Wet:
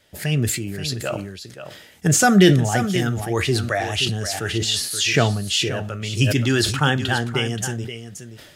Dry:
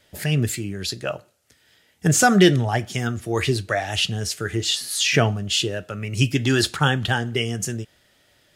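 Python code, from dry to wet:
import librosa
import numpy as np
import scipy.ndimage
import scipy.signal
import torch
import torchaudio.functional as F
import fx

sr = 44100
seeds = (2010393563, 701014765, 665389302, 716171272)

y = fx.graphic_eq_31(x, sr, hz=(200, 1000, 12500), db=(4, -4, 6), at=(2.24, 3.3))
y = y + 10.0 ** (-11.0 / 20.0) * np.pad(y, (int(527 * sr / 1000.0), 0))[:len(y)]
y = fx.sustainer(y, sr, db_per_s=53.0)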